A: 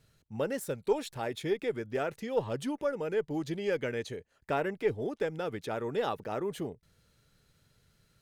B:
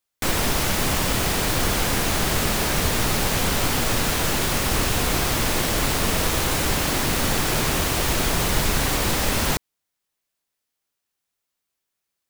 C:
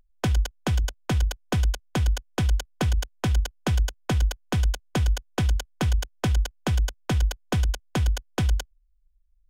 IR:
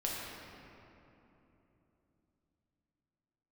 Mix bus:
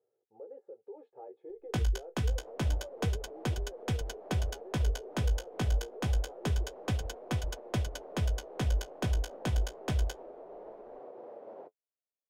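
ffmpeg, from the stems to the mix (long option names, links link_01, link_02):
-filter_complex "[0:a]aecho=1:1:2.4:0.66,alimiter=level_in=1.5dB:limit=-24dB:level=0:latency=1:release=59,volume=-1.5dB,volume=1dB[link_01];[1:a]adelay=2100,volume=-7dB[link_02];[2:a]adelay=1500,volume=-4dB[link_03];[link_01][link_02]amix=inputs=2:normalize=0,asuperpass=centerf=530:order=4:qfactor=1.7,alimiter=level_in=11dB:limit=-24dB:level=0:latency=1:release=190,volume=-11dB,volume=0dB[link_04];[link_03][link_04]amix=inputs=2:normalize=0,flanger=delay=8.1:depth=9.4:regen=-34:speed=0.27:shape=sinusoidal"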